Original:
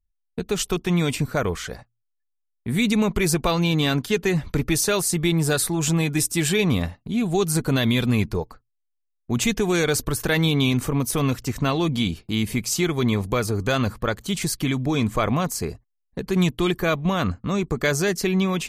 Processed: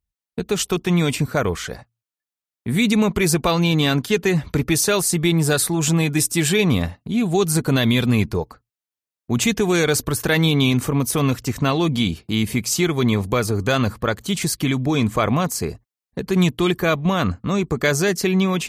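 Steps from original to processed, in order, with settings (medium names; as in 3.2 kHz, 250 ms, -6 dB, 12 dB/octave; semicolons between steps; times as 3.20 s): high-pass 55 Hz; trim +3 dB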